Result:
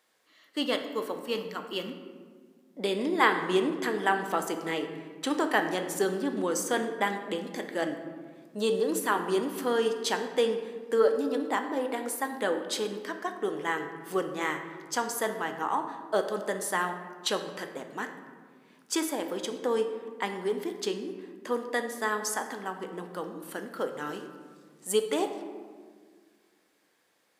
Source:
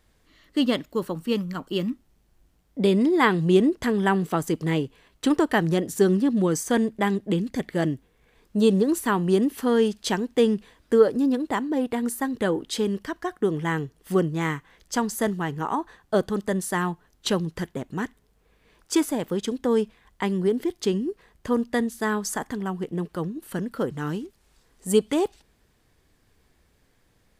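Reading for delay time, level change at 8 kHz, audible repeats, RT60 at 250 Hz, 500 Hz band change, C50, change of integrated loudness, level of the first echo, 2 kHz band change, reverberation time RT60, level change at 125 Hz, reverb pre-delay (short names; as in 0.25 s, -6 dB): none, -1.5 dB, none, 2.5 s, -4.5 dB, 8.0 dB, -5.5 dB, none, -1.0 dB, 1.7 s, -16.5 dB, 4 ms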